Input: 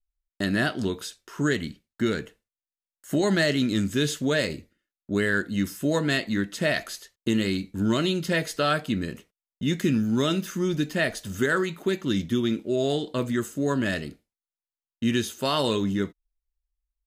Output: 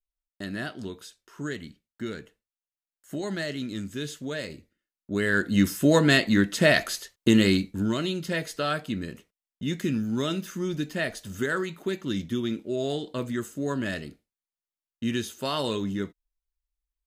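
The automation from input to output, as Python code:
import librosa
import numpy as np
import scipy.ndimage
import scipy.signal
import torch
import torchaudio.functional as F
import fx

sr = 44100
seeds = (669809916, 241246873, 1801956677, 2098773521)

y = fx.gain(x, sr, db=fx.line((4.41, -9.0), (5.18, -2.5), (5.57, 5.0), (7.54, 5.0), (7.94, -4.0)))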